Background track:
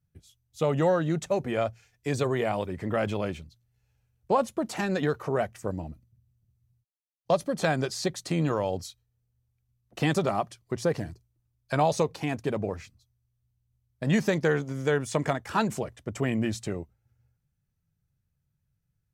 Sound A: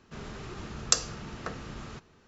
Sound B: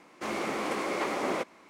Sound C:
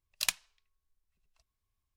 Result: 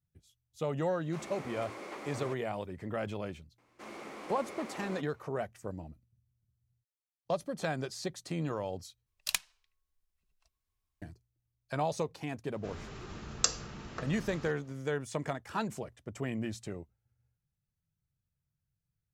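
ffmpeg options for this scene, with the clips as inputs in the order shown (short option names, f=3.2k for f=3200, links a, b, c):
-filter_complex "[2:a]asplit=2[a][b];[0:a]volume=-8.5dB,asplit=2[c][d];[c]atrim=end=9.064[e];[3:a]atrim=end=1.96,asetpts=PTS-STARTPTS,volume=-1.5dB[f];[d]atrim=start=11.016[g];[a]atrim=end=1.69,asetpts=PTS-STARTPTS,volume=-13dB,afade=t=in:d=0.004:c=hsin,afade=t=out:st=1.686:d=0.004:c=hsin,adelay=910[h];[b]atrim=end=1.69,asetpts=PTS-STARTPTS,volume=-13.5dB,afade=t=in:d=0.004:c=hsin,afade=t=out:st=1.686:d=0.004:c=hsin,adelay=3580[i];[1:a]atrim=end=2.27,asetpts=PTS-STARTPTS,volume=-4dB,afade=t=in:d=0.004:c=hsin,afade=t=out:st=2.266:d=0.004:c=hsin,adelay=552132S[j];[e][f]acrossfade=d=0.004:c1=hsin:c2=hsin[k];[k][g]acrossfade=d=0.004:c1=hsin:c2=hsin[l];[l][h][i][j]amix=inputs=4:normalize=0"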